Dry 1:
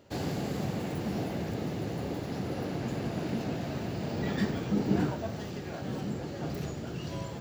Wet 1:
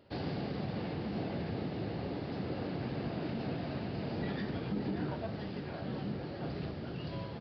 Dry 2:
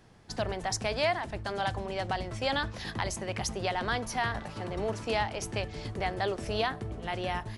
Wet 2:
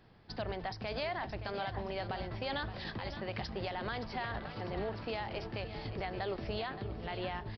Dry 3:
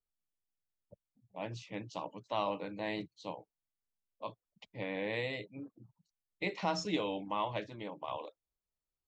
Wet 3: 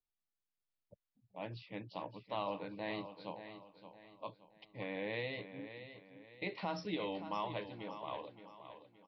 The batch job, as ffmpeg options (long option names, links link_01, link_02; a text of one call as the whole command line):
ffmpeg -i in.wav -af "alimiter=limit=-24dB:level=0:latency=1:release=83,aecho=1:1:571|1142|1713|2284:0.282|0.107|0.0407|0.0155,aresample=11025,aresample=44100,volume=-3.5dB" out.wav